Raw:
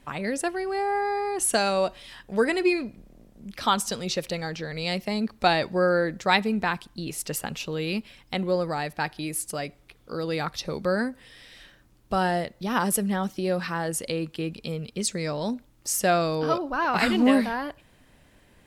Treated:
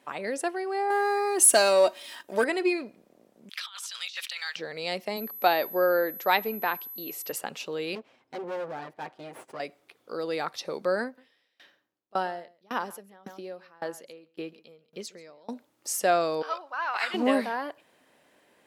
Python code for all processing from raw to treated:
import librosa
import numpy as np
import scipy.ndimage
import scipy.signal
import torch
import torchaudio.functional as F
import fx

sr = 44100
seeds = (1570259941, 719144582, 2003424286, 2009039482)

y = fx.chain(x, sr, fx.leveller(passes=1),
    fx.high_shelf(hz=6500.0, db=10.0),
    fx.comb(ms=3.2, depth=0.45), at=(0.9, 2.44))
y = fx.chain(y, sr, fx.highpass(hz=1300.0, slope=24),
    fx.peak_eq(hz=3300.0, db=9.0, octaves=0.9),
    fx.over_compress(threshold_db=-35.0, ratio=-1.0), at=(3.49, 4.56))
y = fx.highpass(y, sr, hz=200.0, slope=12, at=(5.16, 7.31), fade=0.02)
y = fx.high_shelf(y, sr, hz=6600.0, db=-6.5, at=(5.16, 7.31), fade=0.02)
y = fx.dmg_tone(y, sr, hz=12000.0, level_db=-34.0, at=(5.16, 7.31), fade=0.02)
y = fx.chain(y, sr, fx.lower_of_two(delay_ms=7.7),
    fx.lowpass(hz=1000.0, slope=6),
    fx.clip_hard(threshold_db=-29.5), at=(7.95, 9.6))
y = fx.chain(y, sr, fx.peak_eq(hz=8900.0, db=-14.5, octaves=0.34),
    fx.echo_single(ms=136, db=-15.0),
    fx.tremolo_decay(direction='decaying', hz=1.8, depth_db=28), at=(11.04, 15.49))
y = fx.chain(y, sr, fx.highpass(hz=1100.0, slope=12),
    fx.high_shelf(hz=7000.0, db=-10.0), at=(16.42, 17.14))
y = scipy.signal.sosfilt(scipy.signal.butter(2, 460.0, 'highpass', fs=sr, output='sos'), y)
y = fx.tilt_shelf(y, sr, db=4.0, hz=790.0)